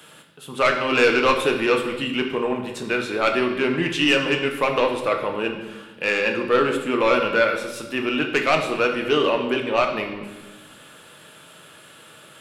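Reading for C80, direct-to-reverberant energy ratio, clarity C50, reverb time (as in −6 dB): 9.0 dB, 2.5 dB, 7.0 dB, 1.2 s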